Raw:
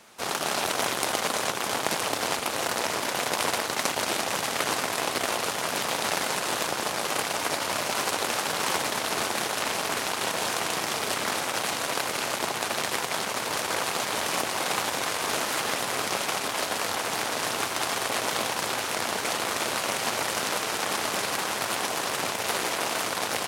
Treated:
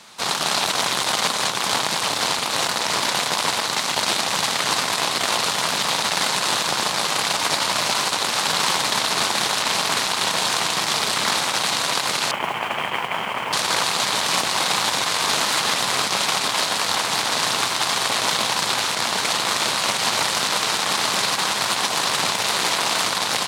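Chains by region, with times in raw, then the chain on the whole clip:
12.31–13.53 s: rippled Chebyshev low-pass 3.2 kHz, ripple 3 dB + modulation noise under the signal 19 dB
whole clip: graphic EQ 125/1000/2000/4000/8000 Hz +4/+7/+3/+11/+6 dB; peak limiter -7 dBFS; peaking EQ 180 Hz +5.5 dB 0.91 oct

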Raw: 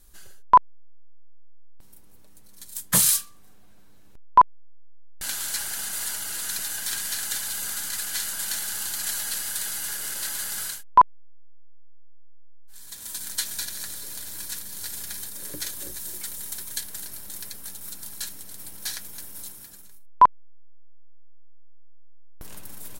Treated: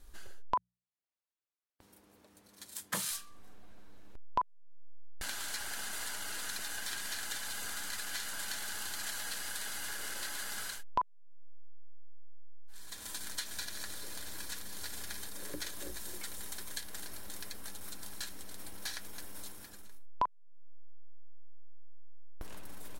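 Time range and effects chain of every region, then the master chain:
0.54–3.11 s: high-pass 100 Hz + hum notches 60/120/180 Hz
whole clip: low-pass 2.9 kHz 6 dB/octave; peaking EQ 140 Hz -11.5 dB 0.6 oct; compression 3:1, threshold -38 dBFS; trim +1.5 dB

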